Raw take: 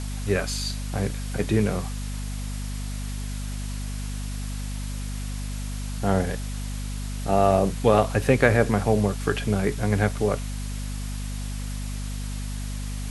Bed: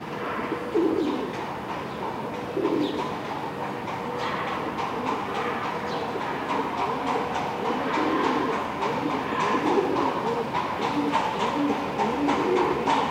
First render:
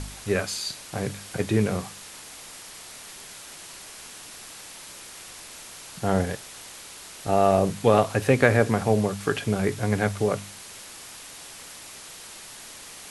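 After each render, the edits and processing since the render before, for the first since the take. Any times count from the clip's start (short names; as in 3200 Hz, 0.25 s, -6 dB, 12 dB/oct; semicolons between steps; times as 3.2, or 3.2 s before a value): de-hum 50 Hz, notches 5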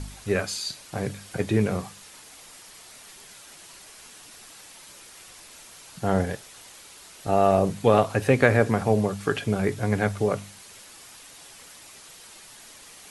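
denoiser 6 dB, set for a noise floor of -43 dBFS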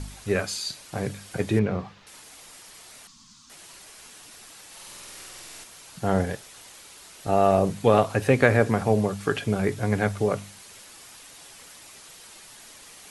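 1.59–2.07 air absorption 220 m; 3.07–3.5 EQ curve 130 Hz 0 dB, 260 Hz +7 dB, 380 Hz -26 dB, 610 Hz -30 dB, 1100 Hz 0 dB, 1600 Hz -15 dB, 2300 Hz -14 dB, 4700 Hz -1 dB, 6900 Hz -3 dB, 11000 Hz -22 dB; 4.67–5.64 flutter echo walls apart 8.3 m, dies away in 1.4 s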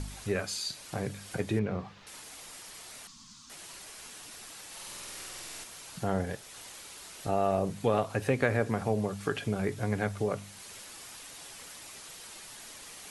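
compressor 1.5:1, threshold -38 dBFS, peak gain reduction 9 dB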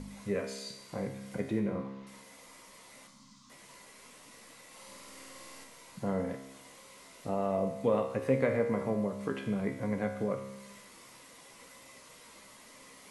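resonator 67 Hz, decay 1 s, harmonics all, mix 80%; small resonant body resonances 230/510/1000/2000 Hz, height 12 dB, ringing for 20 ms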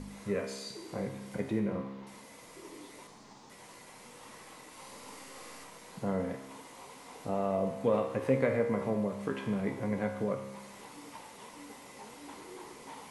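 add bed -25.5 dB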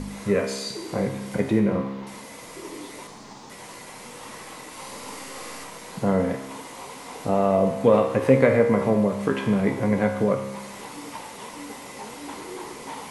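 gain +11 dB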